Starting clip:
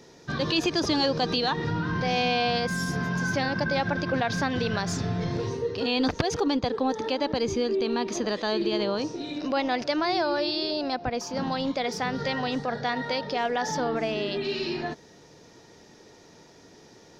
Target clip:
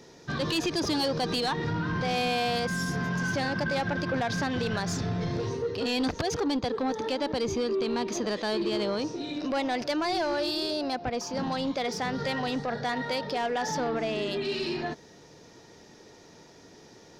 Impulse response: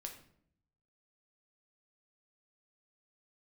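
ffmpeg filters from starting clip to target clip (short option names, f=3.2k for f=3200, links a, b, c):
-af "asoftclip=type=tanh:threshold=-22dB"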